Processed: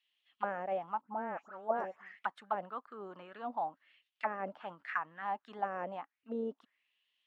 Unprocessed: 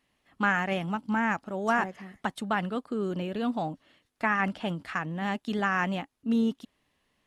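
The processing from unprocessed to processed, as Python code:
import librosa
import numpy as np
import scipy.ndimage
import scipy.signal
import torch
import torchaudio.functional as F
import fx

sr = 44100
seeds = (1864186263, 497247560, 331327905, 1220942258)

y = fx.dispersion(x, sr, late='highs', ms=140.0, hz=2900.0, at=(1.01, 2.19))
y = fx.auto_wah(y, sr, base_hz=540.0, top_hz=3200.0, q=4.0, full_db=-23.0, direction='down')
y = F.gain(torch.from_numpy(y), 2.0).numpy()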